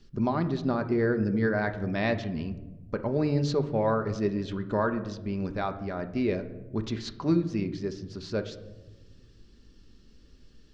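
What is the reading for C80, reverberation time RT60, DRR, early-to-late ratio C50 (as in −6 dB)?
15.0 dB, 1.1 s, 7.0 dB, 12.5 dB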